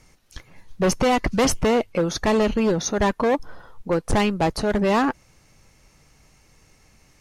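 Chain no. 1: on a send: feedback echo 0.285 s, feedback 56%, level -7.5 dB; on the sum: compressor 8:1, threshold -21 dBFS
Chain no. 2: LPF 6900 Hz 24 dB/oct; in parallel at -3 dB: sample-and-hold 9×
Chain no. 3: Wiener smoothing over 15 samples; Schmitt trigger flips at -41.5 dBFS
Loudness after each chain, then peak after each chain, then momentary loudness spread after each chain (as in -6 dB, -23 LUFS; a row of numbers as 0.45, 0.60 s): -26.0, -17.5, -25.5 LUFS; -13.5, -8.0, -17.5 dBFS; 16, 6, 12 LU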